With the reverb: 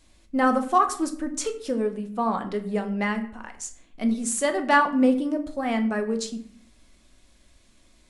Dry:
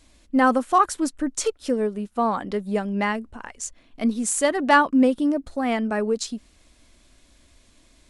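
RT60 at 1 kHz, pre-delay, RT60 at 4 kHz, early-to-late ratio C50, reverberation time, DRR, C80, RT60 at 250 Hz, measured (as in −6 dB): 0.55 s, 5 ms, 0.40 s, 12.5 dB, 0.55 s, 5.5 dB, 15.5 dB, 0.80 s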